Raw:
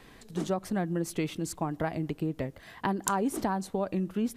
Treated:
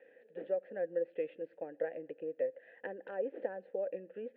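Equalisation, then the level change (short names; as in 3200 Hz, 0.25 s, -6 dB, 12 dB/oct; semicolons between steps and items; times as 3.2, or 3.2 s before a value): vowel filter e; air absorption 280 m; speaker cabinet 170–3300 Hz, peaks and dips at 280 Hz +3 dB, 500 Hz +10 dB, 830 Hz +5 dB, 1600 Hz +6 dB; 0.0 dB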